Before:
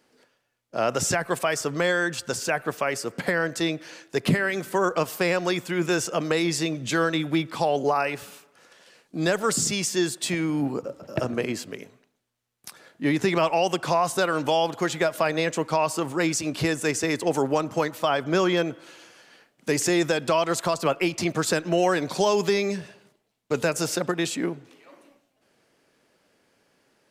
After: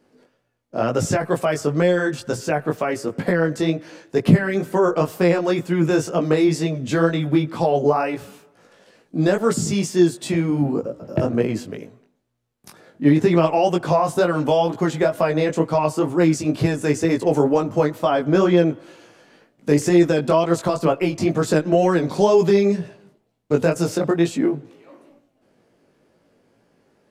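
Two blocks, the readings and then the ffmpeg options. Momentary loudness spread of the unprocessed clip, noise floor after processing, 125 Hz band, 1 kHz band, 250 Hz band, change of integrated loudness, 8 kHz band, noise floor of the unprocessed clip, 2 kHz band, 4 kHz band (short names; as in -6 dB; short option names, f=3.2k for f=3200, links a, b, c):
7 LU, -65 dBFS, +9.0 dB, +2.5 dB, +7.5 dB, +5.5 dB, -4.0 dB, -72 dBFS, -1.0 dB, -3.0 dB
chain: -af "tiltshelf=f=910:g=6.5,flanger=delay=17:depth=3.6:speed=2.1,volume=5.5dB"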